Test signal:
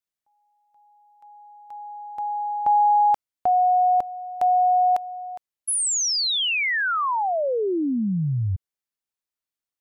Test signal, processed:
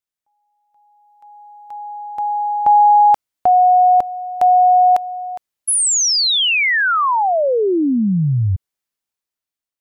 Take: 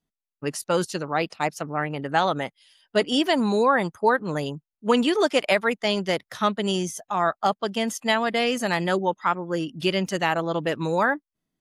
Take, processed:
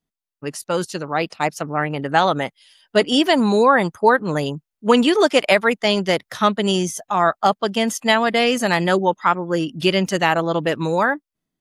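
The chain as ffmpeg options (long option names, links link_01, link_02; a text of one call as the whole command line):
ffmpeg -i in.wav -af "dynaudnorm=framelen=470:gausssize=5:maxgain=7.5dB" out.wav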